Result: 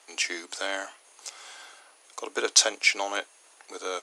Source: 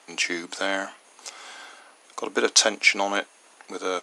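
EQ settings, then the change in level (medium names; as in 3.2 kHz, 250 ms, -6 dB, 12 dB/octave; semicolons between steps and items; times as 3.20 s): high-pass 320 Hz 24 dB/octave; treble shelf 4.2 kHz +7 dB; -5.5 dB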